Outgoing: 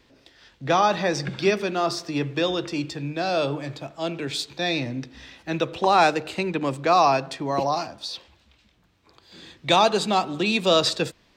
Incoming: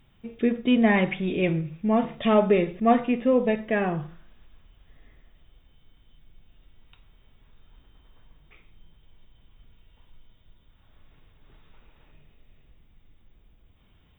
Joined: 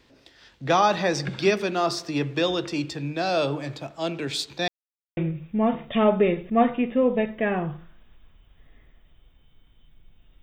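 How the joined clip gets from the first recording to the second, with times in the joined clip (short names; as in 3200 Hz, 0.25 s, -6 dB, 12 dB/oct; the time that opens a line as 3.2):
outgoing
4.68–5.17 mute
5.17 switch to incoming from 1.47 s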